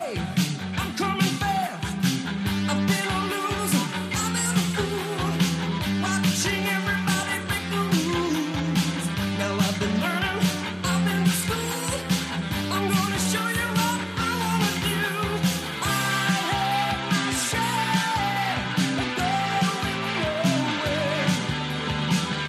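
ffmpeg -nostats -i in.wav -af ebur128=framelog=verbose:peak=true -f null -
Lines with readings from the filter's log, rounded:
Integrated loudness:
  I:         -24.4 LUFS
  Threshold: -34.4 LUFS
Loudness range:
  LRA:         1.0 LU
  Threshold: -44.3 LUFS
  LRA low:   -24.8 LUFS
  LRA high:  -23.8 LUFS
True peak:
  Peak:       -7.8 dBFS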